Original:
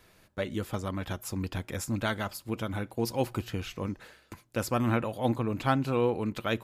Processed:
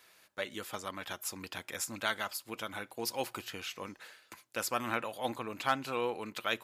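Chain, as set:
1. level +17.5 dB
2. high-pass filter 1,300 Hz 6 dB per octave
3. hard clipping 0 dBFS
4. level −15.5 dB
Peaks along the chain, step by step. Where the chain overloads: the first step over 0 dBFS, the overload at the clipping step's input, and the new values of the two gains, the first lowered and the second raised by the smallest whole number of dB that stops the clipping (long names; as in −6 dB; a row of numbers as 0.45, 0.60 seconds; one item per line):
+5.5, +3.0, 0.0, −15.5 dBFS
step 1, 3.0 dB
step 1 +14.5 dB, step 4 −12.5 dB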